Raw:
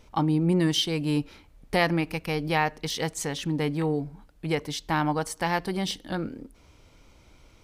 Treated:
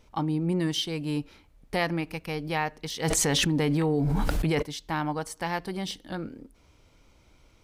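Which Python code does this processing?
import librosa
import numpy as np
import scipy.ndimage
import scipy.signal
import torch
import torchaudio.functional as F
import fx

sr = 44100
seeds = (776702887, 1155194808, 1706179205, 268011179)

y = fx.env_flatten(x, sr, amount_pct=100, at=(3.03, 4.61), fade=0.02)
y = y * 10.0 ** (-4.0 / 20.0)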